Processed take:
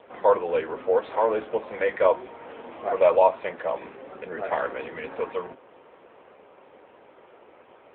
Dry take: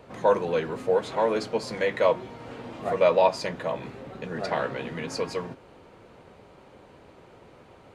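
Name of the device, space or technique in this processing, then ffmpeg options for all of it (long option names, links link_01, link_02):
telephone: -af "highpass=380,lowpass=3100,volume=3dB" -ar 8000 -c:a libopencore_amrnb -b:a 7950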